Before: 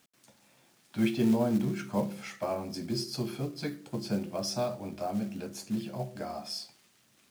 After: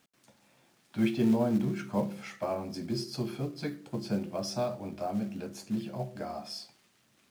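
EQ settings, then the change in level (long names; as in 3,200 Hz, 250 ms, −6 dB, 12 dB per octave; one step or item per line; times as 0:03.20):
high-shelf EQ 4,200 Hz −5.5 dB
0.0 dB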